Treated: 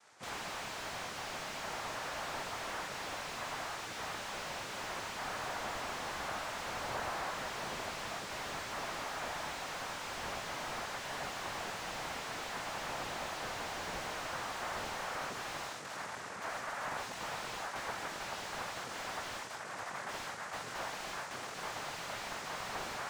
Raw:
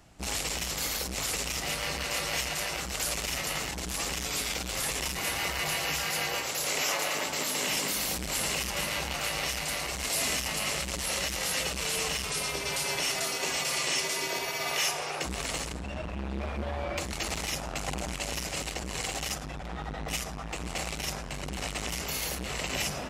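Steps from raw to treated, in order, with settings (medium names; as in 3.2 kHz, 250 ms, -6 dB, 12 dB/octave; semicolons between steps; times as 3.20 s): flutter echo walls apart 3.7 m, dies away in 0.39 s; noise-vocoded speech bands 3; resonant low shelf 490 Hz -10.5 dB, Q 1.5; slew-rate limiter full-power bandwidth 37 Hz; trim -4 dB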